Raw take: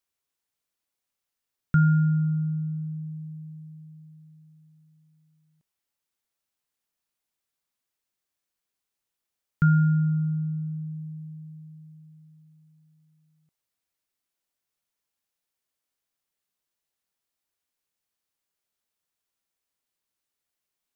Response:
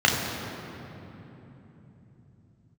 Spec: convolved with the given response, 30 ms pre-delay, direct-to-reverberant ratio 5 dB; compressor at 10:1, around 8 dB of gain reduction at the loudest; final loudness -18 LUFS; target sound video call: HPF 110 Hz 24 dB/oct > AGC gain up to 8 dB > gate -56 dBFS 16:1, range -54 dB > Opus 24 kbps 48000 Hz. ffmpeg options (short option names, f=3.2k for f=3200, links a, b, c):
-filter_complex "[0:a]acompressor=threshold=-24dB:ratio=10,asplit=2[a][b];[1:a]atrim=start_sample=2205,adelay=30[c];[b][c]afir=irnorm=-1:irlink=0,volume=-24dB[d];[a][d]amix=inputs=2:normalize=0,highpass=f=110:w=0.5412,highpass=f=110:w=1.3066,dynaudnorm=m=8dB,agate=range=-54dB:threshold=-56dB:ratio=16,volume=7.5dB" -ar 48000 -c:a libopus -b:a 24k